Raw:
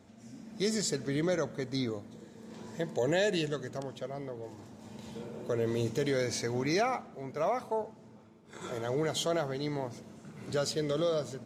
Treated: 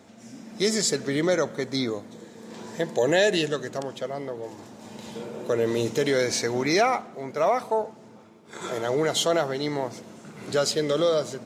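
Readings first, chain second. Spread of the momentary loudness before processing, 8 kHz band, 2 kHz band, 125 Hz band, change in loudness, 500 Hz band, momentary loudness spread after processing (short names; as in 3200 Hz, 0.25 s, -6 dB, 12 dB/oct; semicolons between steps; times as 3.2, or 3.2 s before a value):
18 LU, +9.0 dB, +9.0 dB, +2.0 dB, +7.5 dB, +8.0 dB, 19 LU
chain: HPF 280 Hz 6 dB/oct; gain +9 dB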